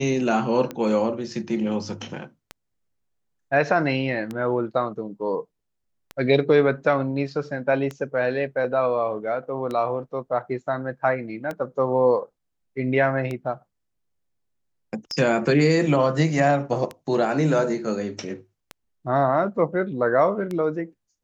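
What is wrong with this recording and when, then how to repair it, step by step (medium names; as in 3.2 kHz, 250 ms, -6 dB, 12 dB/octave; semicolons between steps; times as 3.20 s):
tick 33 1/3 rpm -17 dBFS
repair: de-click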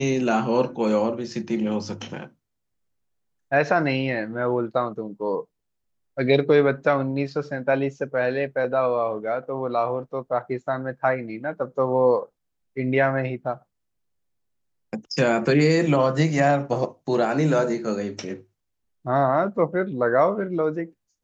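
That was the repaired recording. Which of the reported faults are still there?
nothing left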